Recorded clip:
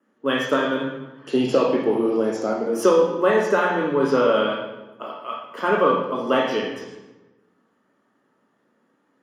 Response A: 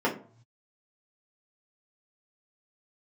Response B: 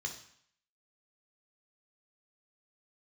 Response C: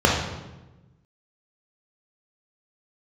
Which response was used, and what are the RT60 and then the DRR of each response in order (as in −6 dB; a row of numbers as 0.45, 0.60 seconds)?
C; 0.50, 0.65, 1.1 seconds; −5.5, 1.5, −2.5 decibels